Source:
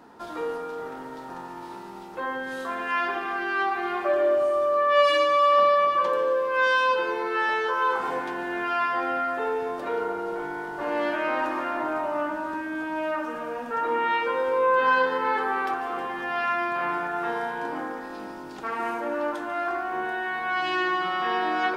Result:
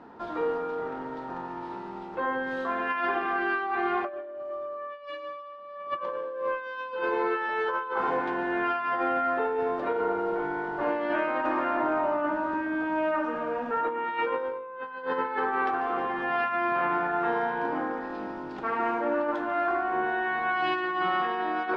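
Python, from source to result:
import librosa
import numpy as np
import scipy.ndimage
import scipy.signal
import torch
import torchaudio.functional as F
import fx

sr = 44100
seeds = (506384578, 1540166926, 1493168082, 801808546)

y = scipy.signal.sosfilt(scipy.signal.butter(2, 4400.0, 'lowpass', fs=sr, output='sos'), x)
y = fx.high_shelf(y, sr, hz=3100.0, db=-9.5)
y = fx.over_compress(y, sr, threshold_db=-28.0, ratio=-0.5)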